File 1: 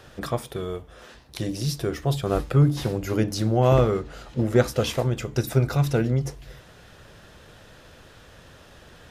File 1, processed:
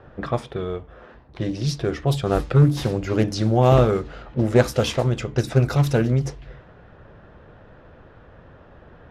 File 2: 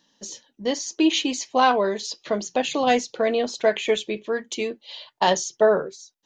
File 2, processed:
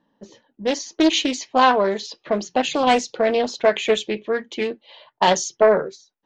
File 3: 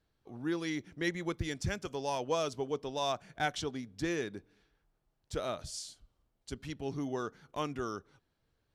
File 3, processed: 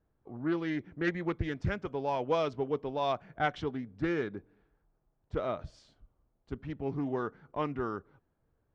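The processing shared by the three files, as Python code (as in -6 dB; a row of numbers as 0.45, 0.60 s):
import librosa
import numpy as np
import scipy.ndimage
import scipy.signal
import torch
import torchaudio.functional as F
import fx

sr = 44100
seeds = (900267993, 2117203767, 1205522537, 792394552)

y = fx.env_lowpass(x, sr, base_hz=1200.0, full_db=-18.0)
y = fx.doppler_dist(y, sr, depth_ms=0.32)
y = y * librosa.db_to_amplitude(3.0)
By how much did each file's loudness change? +3.0, +2.5, +2.5 LU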